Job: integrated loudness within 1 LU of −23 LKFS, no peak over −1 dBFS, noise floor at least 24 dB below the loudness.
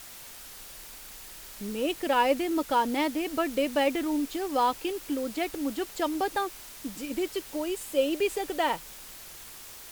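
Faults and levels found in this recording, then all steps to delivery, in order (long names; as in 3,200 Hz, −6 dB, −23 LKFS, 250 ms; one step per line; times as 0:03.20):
background noise floor −46 dBFS; target noise floor −53 dBFS; integrated loudness −29.0 LKFS; sample peak −13.0 dBFS; target loudness −23.0 LKFS
→ noise reduction from a noise print 7 dB
level +6 dB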